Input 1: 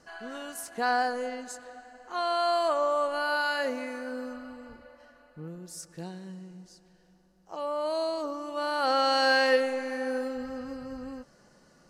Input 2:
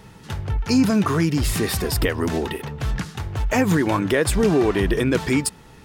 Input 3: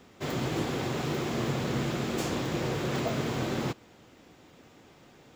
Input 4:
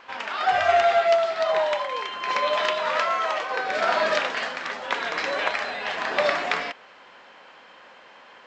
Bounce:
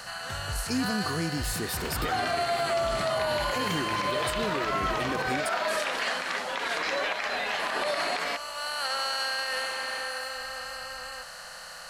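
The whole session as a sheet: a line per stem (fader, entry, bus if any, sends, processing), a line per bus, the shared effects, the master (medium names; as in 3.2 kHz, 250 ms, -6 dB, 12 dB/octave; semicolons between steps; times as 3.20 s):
-0.5 dB, 0.00 s, no bus, no send, spectral levelling over time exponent 0.4; amplifier tone stack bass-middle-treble 10-0-10
-11.0 dB, 0.00 s, bus A, no send, none
-9.0 dB, 1.55 s, no bus, no send, none
-8.0 dB, 1.65 s, bus A, no send, level rider gain up to 15.5 dB
bus A: 0.0 dB, treble shelf 5.4 kHz +6 dB; compression, threshold -22 dBFS, peak gain reduction 6.5 dB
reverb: none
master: peak limiter -19 dBFS, peak gain reduction 8.5 dB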